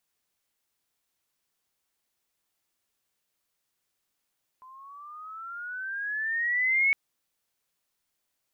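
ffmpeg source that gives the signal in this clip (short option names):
-f lavfi -i "aevalsrc='pow(10,(-19+27.5*(t/2.31-1))/20)*sin(2*PI*1020*2.31/(13.5*log(2)/12)*(exp(13.5*log(2)/12*t/2.31)-1))':d=2.31:s=44100"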